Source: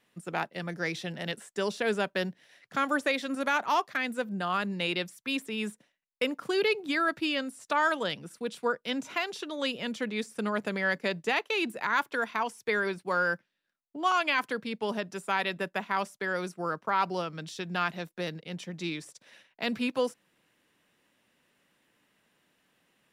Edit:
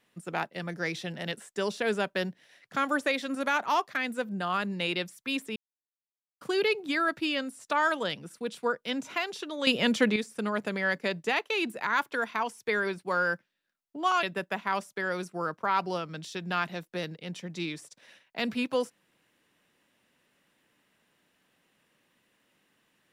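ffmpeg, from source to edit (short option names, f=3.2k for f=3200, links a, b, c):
-filter_complex "[0:a]asplit=6[a][b][c][d][e][f];[a]atrim=end=5.56,asetpts=PTS-STARTPTS,afade=t=out:st=5.556:d=0.004:c=hsin[g];[b]atrim=start=5.56:end=6.41,asetpts=PTS-STARTPTS,volume=0[h];[c]atrim=start=6.41:end=9.672,asetpts=PTS-STARTPTS,afade=t=in:d=0.004:c=hsin[i];[d]atrim=start=9.668:end=10.162,asetpts=PTS-STARTPTS,volume=9dB[j];[e]atrim=start=10.158:end=14.232[k];[f]atrim=start=15.468[l];[g][h][i]concat=n=3:v=0:a=1[m];[m][j]acrossfade=d=0.004:c1=hsin:c2=hsin[n];[n][k]acrossfade=d=0.004:c1=hsin:c2=hsin[o];[o][l]acrossfade=d=0.004:c1=hsin:c2=hsin"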